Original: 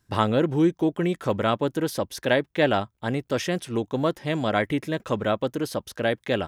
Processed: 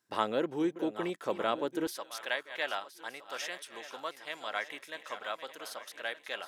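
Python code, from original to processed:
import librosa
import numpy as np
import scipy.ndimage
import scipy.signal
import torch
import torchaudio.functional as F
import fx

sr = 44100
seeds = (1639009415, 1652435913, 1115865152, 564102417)

y = fx.reverse_delay_fb(x, sr, ms=608, feedback_pct=60, wet_db=-12)
y = fx.highpass(y, sr, hz=fx.steps((0.0, 340.0), (1.87, 1000.0)), slope=12)
y = F.gain(torch.from_numpy(y), -7.0).numpy()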